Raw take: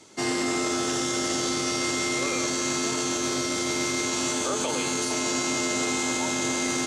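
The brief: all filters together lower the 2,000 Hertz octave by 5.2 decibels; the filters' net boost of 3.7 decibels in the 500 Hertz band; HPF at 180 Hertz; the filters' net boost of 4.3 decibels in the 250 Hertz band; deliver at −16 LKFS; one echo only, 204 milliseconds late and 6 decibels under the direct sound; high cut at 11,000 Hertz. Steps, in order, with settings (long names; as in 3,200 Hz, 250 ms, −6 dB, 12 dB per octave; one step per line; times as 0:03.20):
high-pass filter 180 Hz
low-pass filter 11,000 Hz
parametric band 250 Hz +5 dB
parametric band 500 Hz +3.5 dB
parametric band 2,000 Hz −6 dB
single-tap delay 204 ms −6 dB
level +8.5 dB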